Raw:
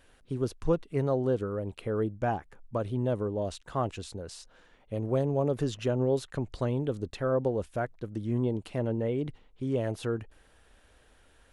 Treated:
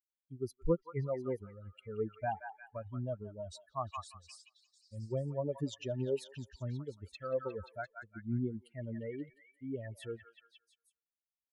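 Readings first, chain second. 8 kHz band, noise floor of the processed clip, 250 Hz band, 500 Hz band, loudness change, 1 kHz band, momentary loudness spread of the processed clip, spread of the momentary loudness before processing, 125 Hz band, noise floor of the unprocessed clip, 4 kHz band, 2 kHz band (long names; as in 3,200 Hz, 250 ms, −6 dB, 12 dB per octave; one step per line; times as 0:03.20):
−8.0 dB, below −85 dBFS, −9.5 dB, −9.0 dB, −8.5 dB, −6.5 dB, 12 LU, 9 LU, −9.0 dB, −62 dBFS, −7.5 dB, −6.0 dB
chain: spectral dynamics exaggerated over time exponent 3
echo through a band-pass that steps 176 ms, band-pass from 1,300 Hz, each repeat 0.7 octaves, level −2.5 dB
level −1.5 dB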